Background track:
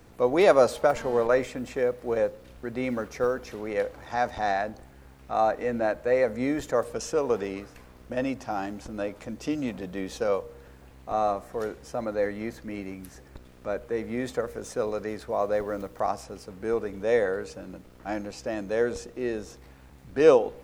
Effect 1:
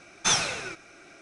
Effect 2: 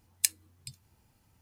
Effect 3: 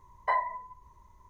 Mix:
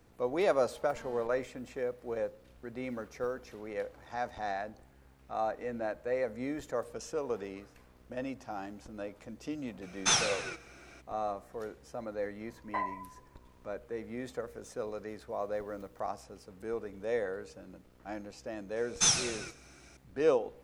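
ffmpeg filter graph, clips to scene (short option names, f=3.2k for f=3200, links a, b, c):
-filter_complex "[1:a]asplit=2[a][b];[0:a]volume=-9.5dB[c];[2:a]acompressor=threshold=-51dB:ratio=6:attack=3.2:release=140:knee=1:detection=peak[d];[b]bass=f=250:g=8,treble=f=4k:g=10[e];[a]atrim=end=1.21,asetpts=PTS-STARTPTS,volume=-3.5dB,afade=t=in:d=0.02,afade=t=out:st=1.19:d=0.02,adelay=9810[f];[3:a]atrim=end=1.29,asetpts=PTS-STARTPTS,volume=-7dB,afade=t=in:d=0.004:c=hsin,afade=t=out:st=1.286:d=0.004:c=hsin,adelay=12460[g];[d]atrim=end=1.41,asetpts=PTS-STARTPTS,volume=-17.5dB,afade=t=in:d=0.004:c=hsin,afade=t=out:st=1.406:d=0.004:c=hsin,adelay=16370[h];[e]atrim=end=1.21,asetpts=PTS-STARTPTS,volume=-9dB,afade=t=in:d=0.004:c=hsin,afade=t=out:st=1.206:d=0.004:c=hsin,adelay=827316S[i];[c][f][g][h][i]amix=inputs=5:normalize=0"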